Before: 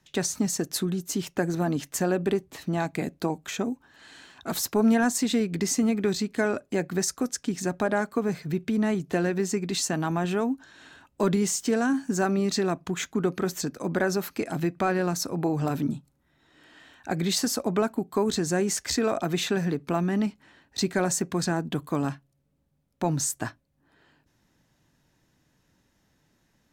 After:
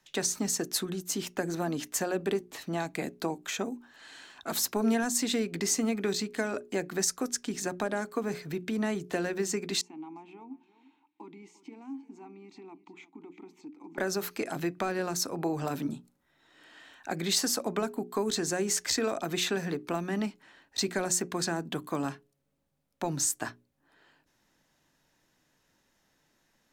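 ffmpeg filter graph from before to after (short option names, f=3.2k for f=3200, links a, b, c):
-filter_complex "[0:a]asettb=1/sr,asplit=3[a][b][c];[a]atrim=end=9.814[d];[b]atrim=start=9.81:end=13.98,asetpts=PTS-STARTPTS,afade=t=in:d=0.004:c=qsin,afade=t=out:st=4.166:d=0.004:c=qsin,acompressor=threshold=-29dB:ratio=2:attack=3.2:release=140:knee=1:detection=peak,asplit=3[e][f][g];[e]bandpass=f=300:t=q:w=8,volume=0dB[h];[f]bandpass=f=870:t=q:w=8,volume=-6dB[i];[g]bandpass=f=2.24k:t=q:w=8,volume=-9dB[j];[h][i][j]amix=inputs=3:normalize=0,aecho=1:1:348:0.133,atrim=end_sample=183897[k];[c]atrim=start=13.976[l];[d][k]acrossfade=d=0.004:c1=hsin:c2=qsin[m];[m][l]acrossfade=d=0.004:c1=qsin:c2=hsin,equalizer=f=83:w=0.41:g=-11,bandreject=f=60:t=h:w=6,bandreject=f=120:t=h:w=6,bandreject=f=180:t=h:w=6,bandreject=f=240:t=h:w=6,bandreject=f=300:t=h:w=6,bandreject=f=360:t=h:w=6,bandreject=f=420:t=h:w=6,acrossover=split=400|3000[n][o][p];[o]acompressor=threshold=-31dB:ratio=6[q];[n][q][p]amix=inputs=3:normalize=0"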